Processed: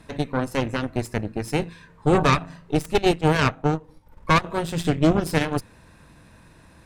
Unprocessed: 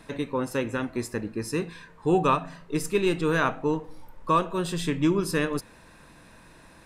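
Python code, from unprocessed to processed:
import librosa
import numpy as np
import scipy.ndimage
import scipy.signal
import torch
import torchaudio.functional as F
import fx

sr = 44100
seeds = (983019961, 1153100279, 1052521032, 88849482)

y = fx.cheby_harmonics(x, sr, harmonics=(4, 7), levels_db=(-7, -31), full_scale_db=-11.5)
y = fx.transient(y, sr, attack_db=1, sustain_db=-7, at=(2.93, 4.44))
y = fx.peak_eq(y, sr, hz=84.0, db=9.0, octaves=2.3)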